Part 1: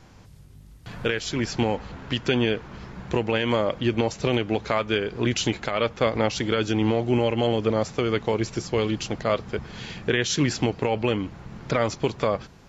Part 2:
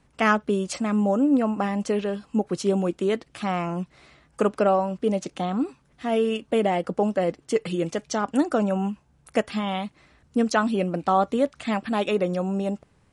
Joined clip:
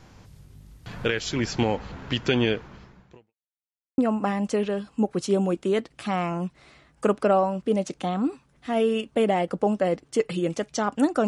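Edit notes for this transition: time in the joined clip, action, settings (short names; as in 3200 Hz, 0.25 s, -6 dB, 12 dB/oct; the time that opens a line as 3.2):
part 1
2.51–3.34 fade out quadratic
3.34–3.98 mute
3.98 switch to part 2 from 1.34 s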